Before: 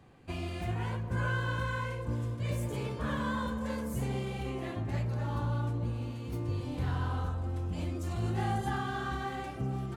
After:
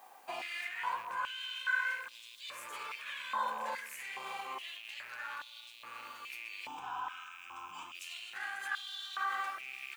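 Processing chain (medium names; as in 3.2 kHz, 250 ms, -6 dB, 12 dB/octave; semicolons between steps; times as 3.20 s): rattle on loud lows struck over -35 dBFS, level -41 dBFS; added noise blue -67 dBFS; 6.67–7.95 s: static phaser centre 2.9 kHz, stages 8; peak limiter -29 dBFS, peak gain reduction 9 dB; step-sequenced high-pass 2.4 Hz 820–3600 Hz; trim +1 dB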